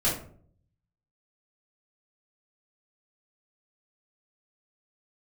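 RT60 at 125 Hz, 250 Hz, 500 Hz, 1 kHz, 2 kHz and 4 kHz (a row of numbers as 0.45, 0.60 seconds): 1.0, 0.70, 0.60, 0.45, 0.35, 0.30 seconds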